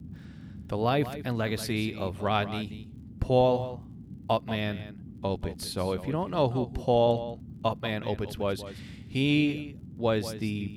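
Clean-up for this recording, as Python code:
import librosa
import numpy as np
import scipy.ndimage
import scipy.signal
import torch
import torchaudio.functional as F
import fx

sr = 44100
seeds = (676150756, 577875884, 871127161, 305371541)

y = fx.fix_declick_ar(x, sr, threshold=6.5)
y = fx.noise_reduce(y, sr, print_start_s=3.79, print_end_s=4.29, reduce_db=28.0)
y = fx.fix_echo_inverse(y, sr, delay_ms=186, level_db=-13.0)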